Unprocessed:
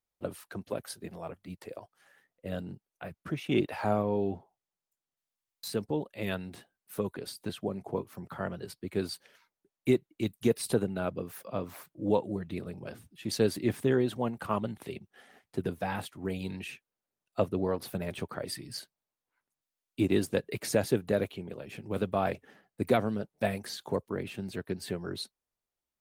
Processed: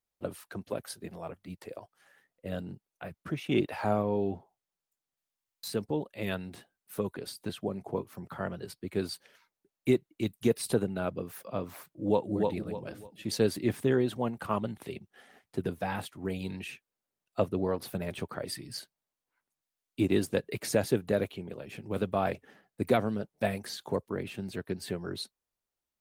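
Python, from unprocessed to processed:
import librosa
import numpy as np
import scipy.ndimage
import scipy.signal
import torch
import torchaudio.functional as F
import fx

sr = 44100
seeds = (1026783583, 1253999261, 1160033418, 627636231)

y = fx.echo_throw(x, sr, start_s=11.87, length_s=0.45, ms=300, feedback_pct=30, wet_db=-2.5)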